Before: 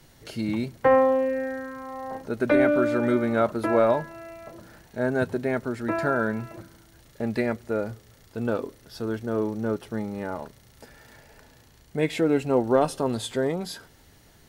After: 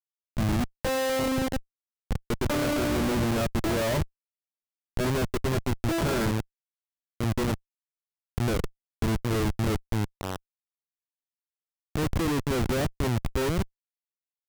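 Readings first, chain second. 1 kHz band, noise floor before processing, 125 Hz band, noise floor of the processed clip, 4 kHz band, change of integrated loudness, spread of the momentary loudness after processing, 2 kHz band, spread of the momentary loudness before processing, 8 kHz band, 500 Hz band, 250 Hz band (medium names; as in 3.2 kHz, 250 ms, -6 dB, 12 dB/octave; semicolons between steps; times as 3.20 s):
-4.5 dB, -55 dBFS, +6.0 dB, under -85 dBFS, +5.5 dB, -3.0 dB, 11 LU, -3.0 dB, 17 LU, no reading, -6.5 dB, -2.5 dB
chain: median filter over 5 samples; spectral replace 7.71–7.93 s, 310–3700 Hz; treble shelf 11 kHz -8 dB; Schmitt trigger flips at -26.5 dBFS; peaking EQ 89 Hz +5.5 dB 1.8 oct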